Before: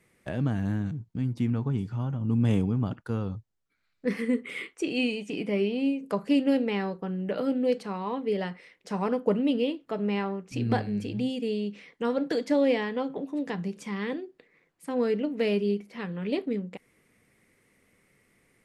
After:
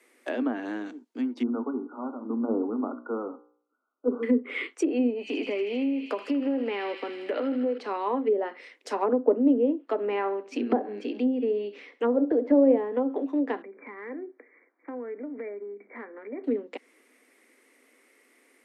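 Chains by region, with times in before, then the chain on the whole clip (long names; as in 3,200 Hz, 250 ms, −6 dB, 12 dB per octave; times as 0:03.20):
0:01.43–0:04.23: linear-phase brick-wall low-pass 1,500 Hz + hum removal 59.81 Hz, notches 38
0:05.11–0:07.78: downward compressor, threshold −28 dBFS + delay with a high-pass on its return 79 ms, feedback 82%, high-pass 2,100 Hz, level −5 dB
0:10.05–0:12.77: high-shelf EQ 4,500 Hz −11 dB + repeating echo 66 ms, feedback 34%, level −16 dB
0:13.62–0:16.44: linear-phase brick-wall low-pass 2,400 Hz + downward compressor, threshold −38 dBFS
whole clip: Butterworth high-pass 240 Hz 96 dB per octave; treble cut that deepens with the level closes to 660 Hz, closed at −25 dBFS; level +5 dB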